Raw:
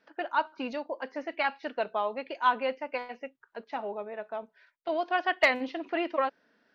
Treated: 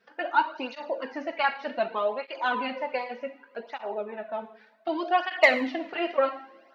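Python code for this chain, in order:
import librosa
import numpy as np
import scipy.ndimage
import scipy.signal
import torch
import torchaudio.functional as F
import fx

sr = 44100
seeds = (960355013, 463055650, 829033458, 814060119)

y = fx.rev_double_slope(x, sr, seeds[0], early_s=0.6, late_s=3.3, knee_db=-26, drr_db=6.0)
y = fx.flanger_cancel(y, sr, hz=0.66, depth_ms=3.5)
y = y * 10.0 ** (5.0 / 20.0)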